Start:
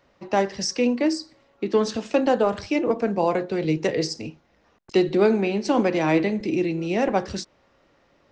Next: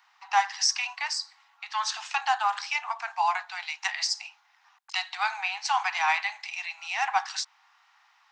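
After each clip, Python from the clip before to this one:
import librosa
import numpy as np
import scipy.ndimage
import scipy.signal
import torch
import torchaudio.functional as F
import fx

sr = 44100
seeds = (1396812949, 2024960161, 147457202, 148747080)

y = scipy.signal.sosfilt(scipy.signal.butter(16, 770.0, 'highpass', fs=sr, output='sos'), x)
y = y * 10.0 ** (3.5 / 20.0)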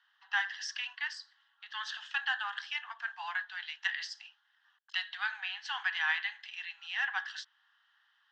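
y = fx.dynamic_eq(x, sr, hz=2200.0, q=1.8, threshold_db=-43.0, ratio=4.0, max_db=8)
y = fx.double_bandpass(y, sr, hz=2300.0, octaves=0.89)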